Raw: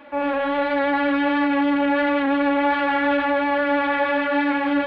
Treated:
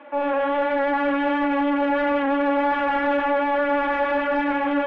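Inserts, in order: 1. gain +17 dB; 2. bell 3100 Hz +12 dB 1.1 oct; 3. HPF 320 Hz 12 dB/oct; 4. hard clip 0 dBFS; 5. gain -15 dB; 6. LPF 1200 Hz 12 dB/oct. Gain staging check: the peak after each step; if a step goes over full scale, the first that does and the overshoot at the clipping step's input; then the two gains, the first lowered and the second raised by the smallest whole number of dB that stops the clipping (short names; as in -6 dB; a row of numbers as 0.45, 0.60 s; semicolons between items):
+7.0, +10.0, +8.5, 0.0, -15.0, -14.5 dBFS; step 1, 8.5 dB; step 1 +8 dB, step 5 -6 dB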